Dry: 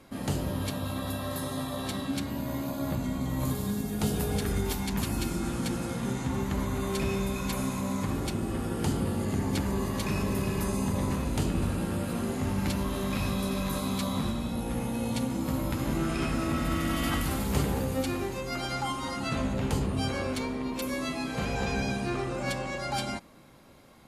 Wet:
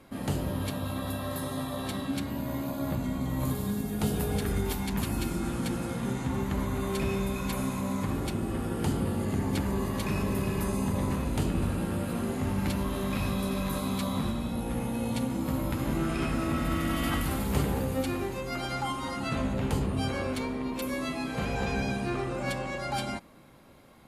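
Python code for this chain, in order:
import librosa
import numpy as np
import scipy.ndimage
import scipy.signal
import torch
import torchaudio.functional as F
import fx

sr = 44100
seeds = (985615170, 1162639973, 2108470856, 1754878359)

y = fx.peak_eq(x, sr, hz=5900.0, db=-4.5, octaves=1.1)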